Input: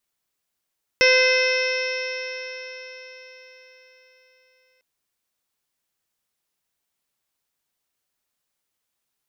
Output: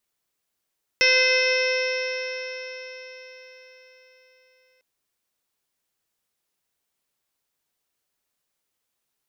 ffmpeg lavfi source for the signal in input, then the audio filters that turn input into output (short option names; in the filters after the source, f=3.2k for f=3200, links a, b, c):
-f lavfi -i "aevalsrc='0.15*pow(10,-3*t/4.52)*sin(2*PI*511.25*t)+0.0237*pow(10,-3*t/4.52)*sin(2*PI*1023.96*t)+0.0708*pow(10,-3*t/4.52)*sin(2*PI*1539.61*t)+0.133*pow(10,-3*t/4.52)*sin(2*PI*2059.64*t)+0.106*pow(10,-3*t/4.52)*sin(2*PI*2585.48*t)+0.0266*pow(10,-3*t/4.52)*sin(2*PI*3118.53*t)+0.0282*pow(10,-3*t/4.52)*sin(2*PI*3660.16*t)+0.0211*pow(10,-3*t/4.52)*sin(2*PI*4211.71*t)+0.0188*pow(10,-3*t/4.52)*sin(2*PI*4774.46*t)+0.0944*pow(10,-3*t/4.52)*sin(2*PI*5349.66*t)+0.0188*pow(10,-3*t/4.52)*sin(2*PI*5938.5*t)':d=3.8:s=44100"
-filter_complex "[0:a]equalizer=f=430:w=1.5:g=2.5,acrossover=split=1600[a][b];[a]alimiter=limit=-21.5dB:level=0:latency=1[c];[c][b]amix=inputs=2:normalize=0"